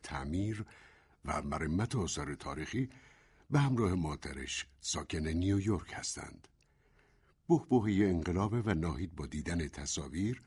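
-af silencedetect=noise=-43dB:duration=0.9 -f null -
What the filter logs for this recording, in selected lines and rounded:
silence_start: 6.44
silence_end: 7.49 | silence_duration: 1.05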